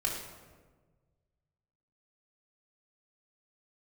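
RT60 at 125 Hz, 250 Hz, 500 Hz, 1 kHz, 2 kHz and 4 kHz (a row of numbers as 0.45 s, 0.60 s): 2.2 s, 1.7 s, 1.6 s, 1.3 s, 1.1 s, 0.85 s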